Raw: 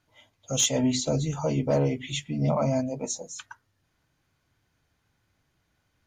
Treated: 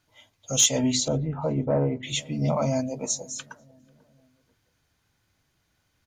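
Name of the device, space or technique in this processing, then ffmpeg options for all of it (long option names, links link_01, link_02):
presence and air boost: -filter_complex "[0:a]equalizer=frequency=4900:width_type=o:width=1.9:gain=3.5,highshelf=frequency=9100:gain=6,asettb=1/sr,asplit=3[link_01][link_02][link_03];[link_01]atrim=end=1.084[link_04];[link_02]atrim=start=1.08:end=2.03,asetpts=PTS-STARTPTS,afade=type=in:duration=0.004:curve=qsin,afade=type=out:start_time=0.946:duration=0.004:curve=qsin,lowpass=frequency=1700:width=0.5412,lowpass=frequency=1700:width=1.3066[link_05];[link_03]atrim=start=2.026[link_06];[link_04][link_05]acrossfade=duration=0.004:curve1=hsin:curve2=qsin[link_07];[link_07][link_06]acrossfade=duration=0.004:curve1=qsin:curve2=hsin,asplit=2[link_08][link_09];[link_09]adelay=490,lowpass=frequency=800:poles=1,volume=-23dB,asplit=2[link_10][link_11];[link_11]adelay=490,lowpass=frequency=800:poles=1,volume=0.52,asplit=2[link_12][link_13];[link_13]adelay=490,lowpass=frequency=800:poles=1,volume=0.52[link_14];[link_08][link_10][link_12][link_14]amix=inputs=4:normalize=0"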